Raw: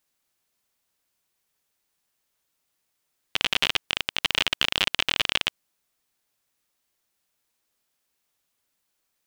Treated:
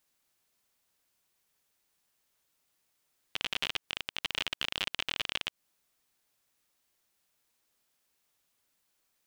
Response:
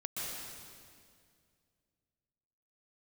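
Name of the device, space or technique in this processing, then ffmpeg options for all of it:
stacked limiters: -af "alimiter=limit=0.398:level=0:latency=1:release=211,alimiter=limit=0.188:level=0:latency=1:release=123"

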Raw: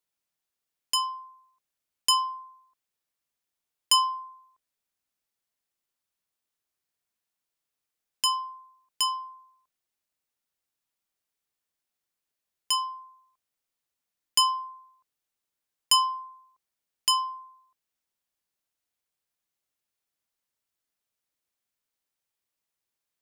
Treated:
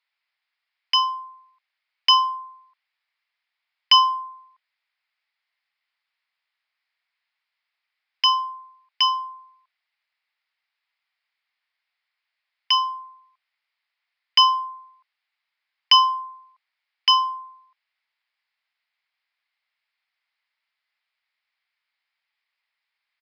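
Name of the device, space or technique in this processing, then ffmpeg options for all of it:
musical greeting card: -af "aresample=11025,aresample=44100,highpass=f=780:w=0.5412,highpass=f=780:w=1.3066,equalizer=f=2100:t=o:w=0.57:g=10,volume=2.24"

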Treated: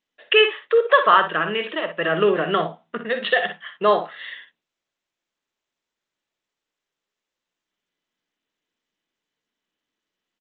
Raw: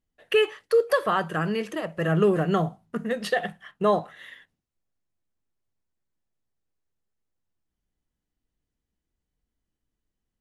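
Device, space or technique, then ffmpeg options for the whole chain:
Bluetooth headset: -filter_complex "[0:a]aemphasis=mode=production:type=riaa,bandreject=f=770:w=12,asettb=1/sr,asplit=3[s0][s1][s2];[s0]atrim=end=0.804[s3];[s1]atrim=start=0.8:end=1.3,asetpts=PTS-STARTPTS,afade=t=in:d=0.004:c=qsin,afade=t=out:st=0.496:d=0.004:c=qsin,equalizer=f=1100:t=o:w=0.93:g=5[s4];[s2]atrim=start=1.296[s5];[s3][s4]acrossfade=d=0.004:c1=hsin:c2=qsin[s6];[s6][s5]acrossfade=d=0.004:c1=qsin:c2=hsin,highpass=200,aecho=1:1:48|60:0.2|0.299,aresample=8000,aresample=44100,volume=2" -ar 16000 -c:a sbc -b:a 64k

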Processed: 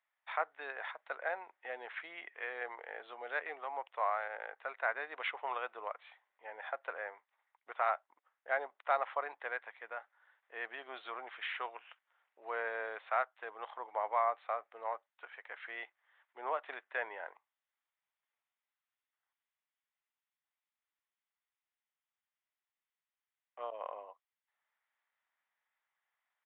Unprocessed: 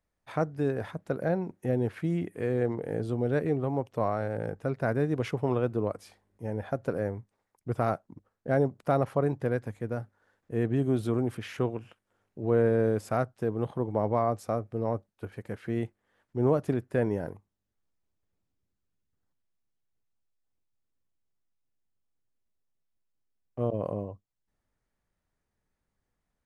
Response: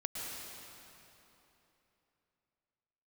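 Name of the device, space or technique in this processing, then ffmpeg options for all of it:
musical greeting card: -af "aresample=8000,aresample=44100,highpass=f=820:w=0.5412,highpass=f=820:w=1.3066,equalizer=f=2000:t=o:w=0.31:g=5,volume=1.19"

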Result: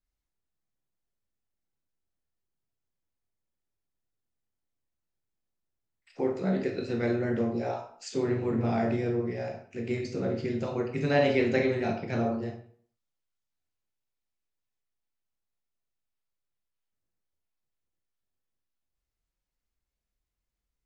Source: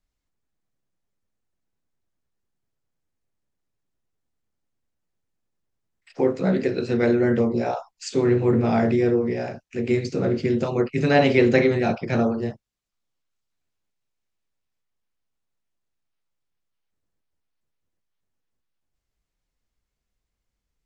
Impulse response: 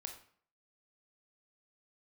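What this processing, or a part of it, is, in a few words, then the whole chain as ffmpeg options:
bathroom: -filter_complex "[1:a]atrim=start_sample=2205[s0];[0:a][s0]afir=irnorm=-1:irlink=0,volume=0.668"

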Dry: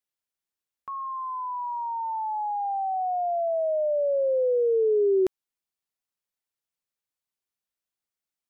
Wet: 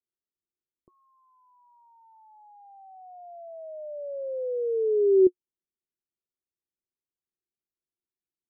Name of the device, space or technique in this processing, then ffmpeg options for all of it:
under water: -filter_complex "[0:a]asplit=3[s0][s1][s2];[s0]afade=t=out:st=2.75:d=0.02[s3];[s1]highpass=210,afade=t=in:st=2.75:d=0.02,afade=t=out:st=3.18:d=0.02[s4];[s2]afade=t=in:st=3.18:d=0.02[s5];[s3][s4][s5]amix=inputs=3:normalize=0,lowpass=f=440:w=0.5412,lowpass=f=440:w=1.3066,equalizer=f=360:t=o:w=0.28:g=10,volume=0.794"

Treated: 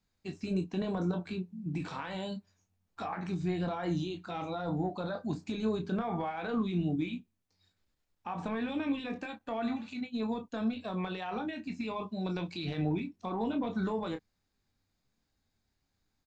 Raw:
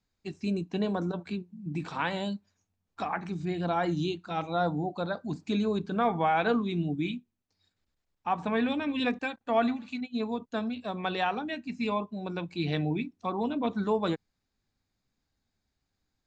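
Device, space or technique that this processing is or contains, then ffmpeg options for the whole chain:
de-esser from a sidechain: -filter_complex "[0:a]asplit=2[s0][s1];[s1]highpass=f=6600:p=1,apad=whole_len=717174[s2];[s0][s2]sidechaincompress=threshold=0.00282:ratio=8:attack=3.1:release=27,asettb=1/sr,asplit=3[s3][s4][s5];[s3]atrim=end=11.964[s6];[s4]atrim=start=11.96:end=12.66,asetpts=PTS-STARTPTS,afade=t=in:d=0.004:c=qsin,afade=t=out:st=0.696:d=0.004:c=qsin,equalizer=f=4600:t=o:w=1.3:g=7[s7];[s5]atrim=start=12.656[s8];[s6][s7]acrossfade=d=0.004:c1=hsin:c2=qsin[s9];[s9][s8]acrossfade=d=0.004:c1=qsin:c2=hsin,aecho=1:1:22|32:0.398|0.299"

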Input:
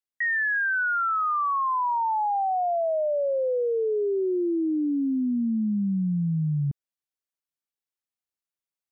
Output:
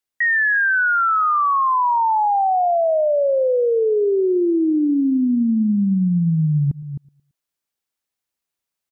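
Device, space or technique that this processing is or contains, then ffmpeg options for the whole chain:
ducked delay: -filter_complex "[0:a]asplit=3[s0][s1][s2];[s1]adelay=262,volume=0.531[s3];[s2]apad=whole_len=404526[s4];[s3][s4]sidechaincompress=threshold=0.01:ratio=8:attack=16:release=297[s5];[s0][s5]amix=inputs=2:normalize=0,aecho=1:1:112|224|336:0.0708|0.0269|0.0102,volume=2.37"

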